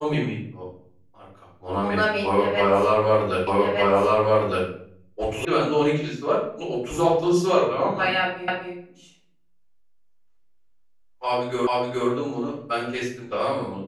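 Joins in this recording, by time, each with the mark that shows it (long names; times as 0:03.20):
0:03.47: the same again, the last 1.21 s
0:05.45: cut off before it has died away
0:08.48: the same again, the last 0.25 s
0:11.67: the same again, the last 0.42 s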